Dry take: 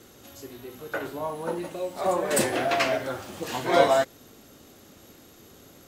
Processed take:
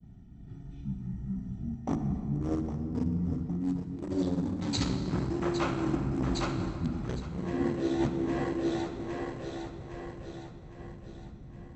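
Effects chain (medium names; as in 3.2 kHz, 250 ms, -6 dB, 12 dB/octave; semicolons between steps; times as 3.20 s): local Wiener filter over 41 samples; bass shelf 320 Hz +7 dB; two-band feedback delay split 770 Hz, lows 174 ms, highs 405 ms, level -13 dB; reverse; compression 16:1, threshold -31 dBFS, peak gain reduction 20 dB; reverse; expander -47 dBFS; speed mistake 15 ips tape played at 7.5 ips; peaking EQ 8.6 kHz +8 dB 1.1 oct; on a send at -8 dB: reverberation RT60 2.8 s, pre-delay 50 ms; on the sum: trim +4 dB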